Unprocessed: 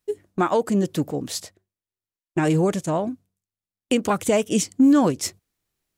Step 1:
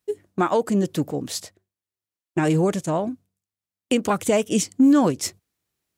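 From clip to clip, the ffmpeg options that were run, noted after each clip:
-af "highpass=58"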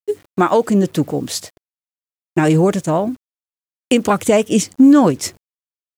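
-af "acrusher=bits=8:mix=0:aa=0.000001,adynamicequalizer=threshold=0.01:dfrequency=2700:dqfactor=0.7:tfrequency=2700:tqfactor=0.7:attack=5:release=100:ratio=0.375:range=2:mode=cutabove:tftype=highshelf,volume=6.5dB"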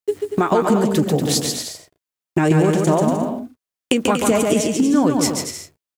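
-filter_complex "[0:a]acompressor=threshold=-19dB:ratio=6,asplit=2[a][b];[b]adelay=13,volume=-14dB[c];[a][c]amix=inputs=2:normalize=0,aecho=1:1:140|238|306.6|354.6|388.2:0.631|0.398|0.251|0.158|0.1,volume=4dB"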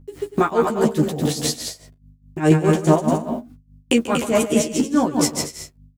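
-filter_complex "[0:a]aeval=exprs='val(0)+0.00631*(sin(2*PI*50*n/s)+sin(2*PI*2*50*n/s)/2+sin(2*PI*3*50*n/s)/3+sin(2*PI*4*50*n/s)/4+sin(2*PI*5*50*n/s)/5)':c=same,tremolo=f=4.8:d=0.82,asplit=2[a][b];[b]adelay=13,volume=-4.5dB[c];[a][c]amix=inputs=2:normalize=0"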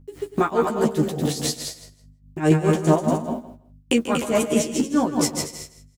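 -af "aecho=1:1:161|322:0.178|0.0267,volume=-2.5dB"

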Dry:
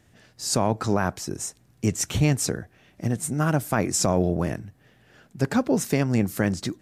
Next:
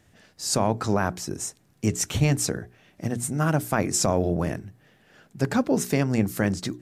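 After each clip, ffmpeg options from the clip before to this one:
-af "bandreject=f=60:t=h:w=6,bandreject=f=120:t=h:w=6,bandreject=f=180:t=h:w=6,bandreject=f=240:t=h:w=6,bandreject=f=300:t=h:w=6,bandreject=f=360:t=h:w=6,bandreject=f=420:t=h:w=6"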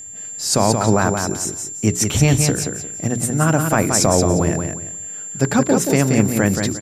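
-af "aeval=exprs='val(0)+0.0112*sin(2*PI*7300*n/s)':c=same,aecho=1:1:177|354|531:0.531|0.133|0.0332,volume=6.5dB"

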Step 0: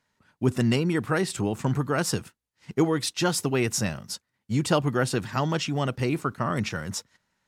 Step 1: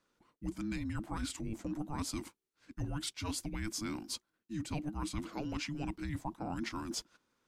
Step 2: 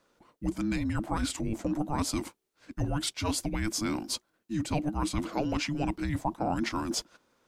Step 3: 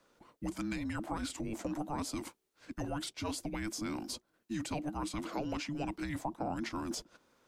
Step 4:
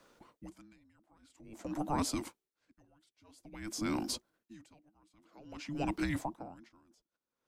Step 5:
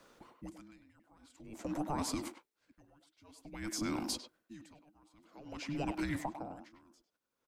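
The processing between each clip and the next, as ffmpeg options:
-af "areverse,acompressor=threshold=-32dB:ratio=6,areverse,afreqshift=-440,volume=-3.5dB"
-af "equalizer=f=610:t=o:w=1:g=6.5,volume=7dB"
-filter_complex "[0:a]acrossover=split=210|650[a][b][c];[a]acompressor=threshold=-45dB:ratio=4[d];[b]acompressor=threshold=-39dB:ratio=4[e];[c]acompressor=threshold=-41dB:ratio=4[f];[d][e][f]amix=inputs=3:normalize=0"
-af "aeval=exprs='val(0)*pow(10,-36*(0.5-0.5*cos(2*PI*0.5*n/s))/20)':c=same,volume=5dB"
-filter_complex "[0:a]acompressor=threshold=-35dB:ratio=5,asplit=2[a][b];[b]adelay=100,highpass=300,lowpass=3.4k,asoftclip=type=hard:threshold=-35dB,volume=-7dB[c];[a][c]amix=inputs=2:normalize=0,volume=2dB"

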